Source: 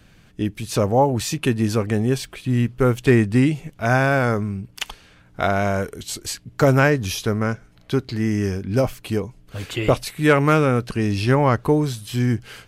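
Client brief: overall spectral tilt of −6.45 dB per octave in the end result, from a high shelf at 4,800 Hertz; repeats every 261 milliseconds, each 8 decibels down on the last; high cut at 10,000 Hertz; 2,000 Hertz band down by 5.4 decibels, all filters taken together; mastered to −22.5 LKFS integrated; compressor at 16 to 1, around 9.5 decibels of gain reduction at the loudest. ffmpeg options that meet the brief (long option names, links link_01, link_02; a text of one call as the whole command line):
ffmpeg -i in.wav -af "lowpass=10000,equalizer=frequency=2000:width_type=o:gain=-7,highshelf=frequency=4800:gain=-5,acompressor=threshold=-20dB:ratio=16,aecho=1:1:261|522|783|1044|1305:0.398|0.159|0.0637|0.0255|0.0102,volume=4dB" out.wav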